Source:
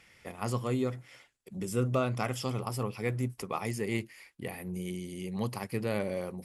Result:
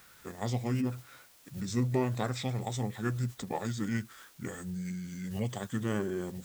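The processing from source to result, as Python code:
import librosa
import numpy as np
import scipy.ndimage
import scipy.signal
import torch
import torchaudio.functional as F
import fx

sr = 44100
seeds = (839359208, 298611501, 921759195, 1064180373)

y = fx.quant_dither(x, sr, seeds[0], bits=10, dither='triangular')
y = fx.formant_shift(y, sr, semitones=-6)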